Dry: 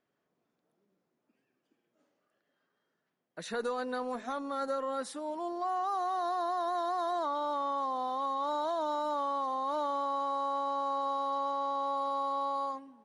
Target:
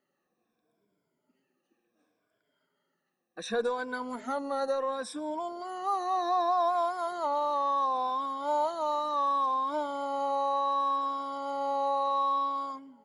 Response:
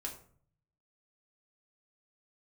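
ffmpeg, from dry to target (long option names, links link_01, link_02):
-af "afftfilt=real='re*pow(10,15/40*sin(2*PI*(1.7*log(max(b,1)*sr/1024/100)/log(2)-(-0.68)*(pts-256)/sr)))':imag='im*pow(10,15/40*sin(2*PI*(1.7*log(max(b,1)*sr/1024/100)/log(2)-(-0.68)*(pts-256)/sr)))':win_size=1024:overlap=0.75,aeval=exprs='0.119*(cos(1*acos(clip(val(0)/0.119,-1,1)))-cos(1*PI/2))+0.00106*(cos(7*acos(clip(val(0)/0.119,-1,1)))-cos(7*PI/2))':channel_layout=same"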